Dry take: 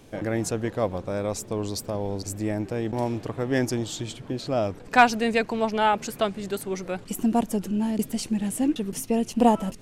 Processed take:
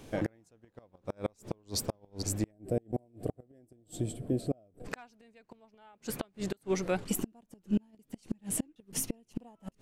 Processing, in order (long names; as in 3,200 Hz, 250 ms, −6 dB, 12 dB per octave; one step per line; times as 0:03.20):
gate with flip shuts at −19 dBFS, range −36 dB
gain on a spectral selection 0:02.51–0:04.85, 760–7,500 Hz −15 dB